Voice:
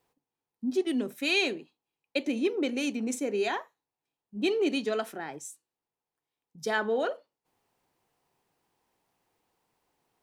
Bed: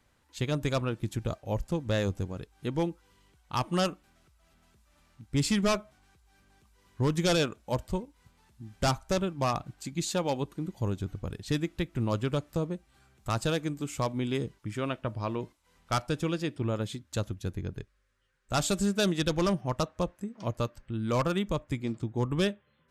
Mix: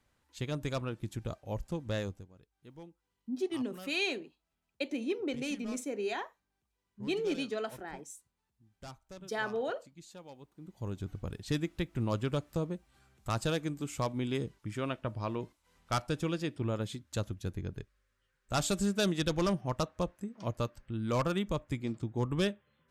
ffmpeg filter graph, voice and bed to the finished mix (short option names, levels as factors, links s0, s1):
-filter_complex "[0:a]adelay=2650,volume=0.501[s0];[1:a]volume=3.98,afade=t=out:st=1.98:d=0.28:silence=0.177828,afade=t=in:st=10.53:d=0.65:silence=0.125893[s1];[s0][s1]amix=inputs=2:normalize=0"